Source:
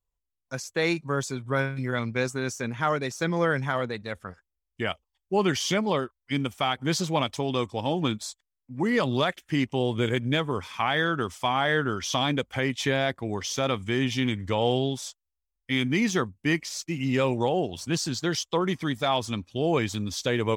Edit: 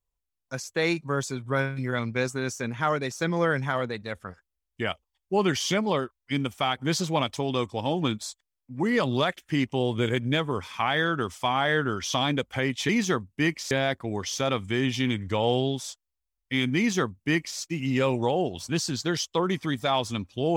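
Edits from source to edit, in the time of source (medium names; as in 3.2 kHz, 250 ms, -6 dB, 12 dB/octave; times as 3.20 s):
15.95–16.77 s: copy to 12.89 s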